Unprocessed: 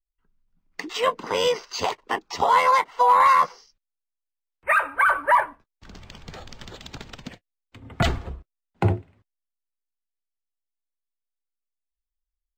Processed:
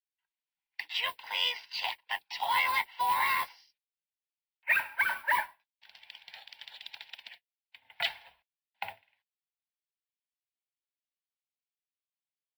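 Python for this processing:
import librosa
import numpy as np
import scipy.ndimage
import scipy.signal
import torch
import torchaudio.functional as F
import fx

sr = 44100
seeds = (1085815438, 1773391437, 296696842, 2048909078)

y = scipy.signal.sosfilt(scipy.signal.ellip(3, 1.0, 40, [880.0, 7100.0], 'bandpass', fs=sr, output='sos'), x)
y = fx.mod_noise(y, sr, seeds[0], snr_db=23)
y = fx.fixed_phaser(y, sr, hz=2900.0, stages=4)
y = fx.band_squash(y, sr, depth_pct=70, at=(4.75, 5.33))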